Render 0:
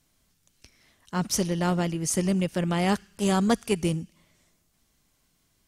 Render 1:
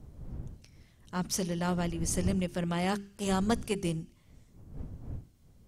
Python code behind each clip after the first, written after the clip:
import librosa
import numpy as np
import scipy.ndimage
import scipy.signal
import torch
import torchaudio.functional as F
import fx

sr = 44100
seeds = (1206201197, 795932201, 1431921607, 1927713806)

y = fx.dmg_wind(x, sr, seeds[0], corner_hz=120.0, level_db=-36.0)
y = fx.hum_notches(y, sr, base_hz=50, count=8)
y = y * librosa.db_to_amplitude(-5.5)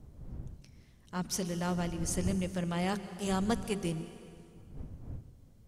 y = fx.rev_plate(x, sr, seeds[1], rt60_s=2.3, hf_ratio=0.85, predelay_ms=120, drr_db=12.5)
y = y * librosa.db_to_amplitude(-2.5)